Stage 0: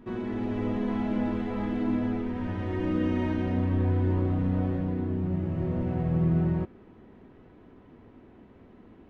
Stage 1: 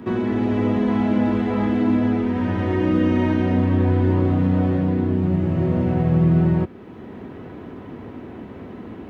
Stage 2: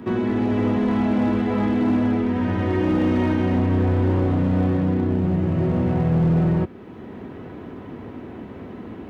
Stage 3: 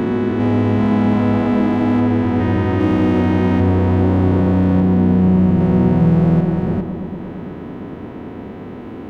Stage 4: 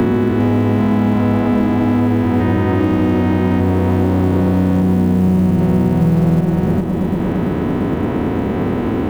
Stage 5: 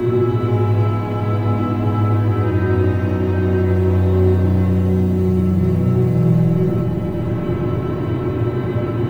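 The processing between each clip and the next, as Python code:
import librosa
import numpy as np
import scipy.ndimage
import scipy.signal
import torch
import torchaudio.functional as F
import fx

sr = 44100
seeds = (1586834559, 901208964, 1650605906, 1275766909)

y1 = scipy.signal.sosfilt(scipy.signal.butter(2, 79.0, 'highpass', fs=sr, output='sos'), x)
y1 = fx.band_squash(y1, sr, depth_pct=40)
y1 = y1 * 10.0 ** (9.0 / 20.0)
y2 = np.clip(10.0 ** (15.0 / 20.0) * y1, -1.0, 1.0) / 10.0 ** (15.0 / 20.0)
y3 = fx.spec_steps(y2, sr, hold_ms=400)
y3 = fx.echo_bbd(y3, sr, ms=114, stages=1024, feedback_pct=83, wet_db=-10.5)
y3 = y3 * 10.0 ** (6.0 / 20.0)
y4 = fx.quant_companded(y3, sr, bits=8)
y4 = fx.band_squash(y4, sr, depth_pct=100)
y5 = fx.comb_fb(y4, sr, f0_hz=120.0, decay_s=0.16, harmonics='odd', damping=0.0, mix_pct=90)
y5 = fx.room_shoebox(y5, sr, seeds[0], volume_m3=1400.0, walls='mixed', distance_m=3.0)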